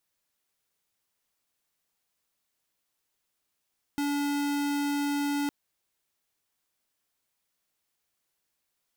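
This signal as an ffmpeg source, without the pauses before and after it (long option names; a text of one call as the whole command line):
ffmpeg -f lavfi -i "aevalsrc='0.0376*(2*lt(mod(287*t,1),0.5)-1)':duration=1.51:sample_rate=44100" out.wav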